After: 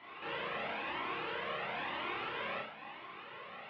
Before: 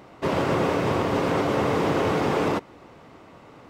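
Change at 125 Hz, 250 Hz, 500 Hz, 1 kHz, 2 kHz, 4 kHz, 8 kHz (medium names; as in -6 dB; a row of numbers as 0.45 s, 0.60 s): -27.5 dB, -24.5 dB, -19.5 dB, -13.0 dB, -7.0 dB, -7.5 dB, under -35 dB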